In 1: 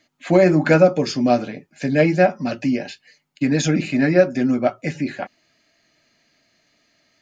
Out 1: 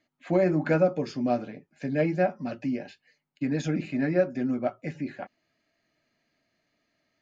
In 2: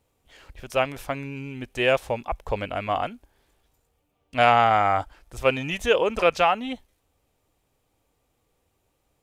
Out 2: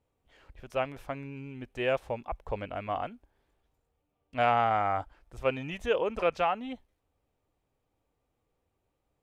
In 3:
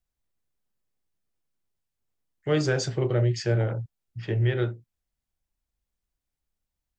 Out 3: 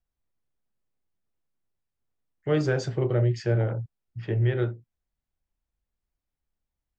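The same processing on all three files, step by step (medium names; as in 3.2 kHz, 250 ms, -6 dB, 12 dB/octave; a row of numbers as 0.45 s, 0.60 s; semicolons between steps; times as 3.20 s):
treble shelf 3.3 kHz -11 dB; peak normalisation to -12 dBFS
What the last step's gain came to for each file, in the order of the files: -9.0 dB, -6.5 dB, 0.0 dB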